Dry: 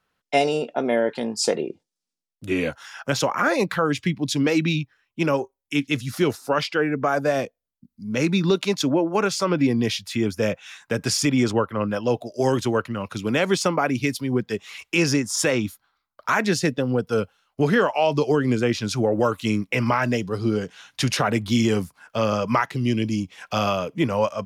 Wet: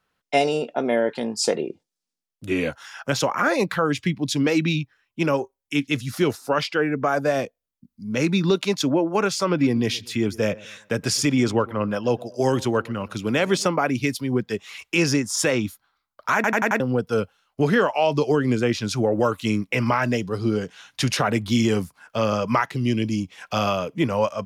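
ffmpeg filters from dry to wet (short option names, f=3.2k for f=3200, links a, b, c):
-filter_complex "[0:a]asettb=1/sr,asplit=3[a][b][c];[a]atrim=end=9.504[d];[b]atrim=start=9.5:end=13.68,asetpts=PTS-STARTPTS,afade=t=in:d=0.004:c=qsin,afade=t=out:st=4.176:d=0.004:c=qsin,asplit=2[e][f];[f]adelay=121,lowpass=f=1.6k:p=1,volume=-21dB,asplit=2[g][h];[h]adelay=121,lowpass=f=1.6k:p=1,volume=0.42,asplit=2[i][j];[j]adelay=121,lowpass=f=1.6k:p=1,volume=0.42[k];[e][g][i][k]amix=inputs=4:normalize=0,atrim=end_sample=184338[l];[c]atrim=start=13.676[m];[d][l]acrossfade=d=0.004:c1=hsin:c2=qsin[n];[n][m]acrossfade=d=0.004:c1=qsin:c2=hsin,asplit=6[o][p][q][r][s][t];[o]atrim=end=16.442[u];[p]atrim=start=16.348:end=16.442[v];[q]atrim=start=16.348:end=16.442[w];[r]atrim=start=16.348:end=16.442[x];[s]atrim=start=16.348:end=16.442[y];[t]atrim=start=16.798[z];[u][v]acrossfade=d=0.004:c1=hsin:c2=hsin[aa];[aa][w]acrossfade=d=0.004:c1=hsin:c2=hsin[ab];[ab][x]acrossfade=d=0.004:c1=hsin:c2=hsin[ac];[ac][y]acrossfade=d=0.004:c1=hsin:c2=hsin[ad];[ad][z]acrossfade=d=0.004:c1=hsin:c2=hsin"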